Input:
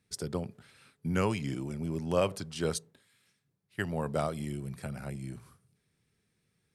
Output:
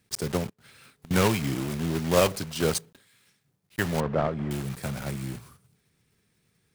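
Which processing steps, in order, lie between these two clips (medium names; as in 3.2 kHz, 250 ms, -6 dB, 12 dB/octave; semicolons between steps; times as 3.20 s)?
block-companded coder 3-bit; 0.49–1.11 s: inverted gate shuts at -42 dBFS, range -25 dB; 4.00–4.51 s: Bessel low-pass 1.3 kHz, order 2; trim +6 dB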